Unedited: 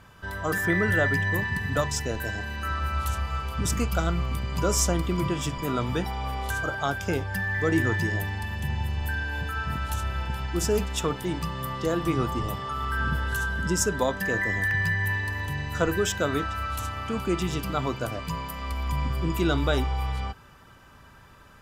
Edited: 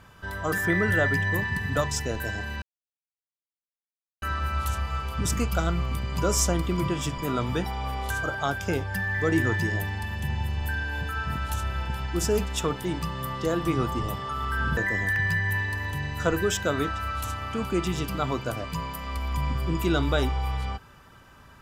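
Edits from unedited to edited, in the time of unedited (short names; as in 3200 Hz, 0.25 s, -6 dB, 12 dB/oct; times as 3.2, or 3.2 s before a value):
2.62 insert silence 1.60 s
13.17–14.32 cut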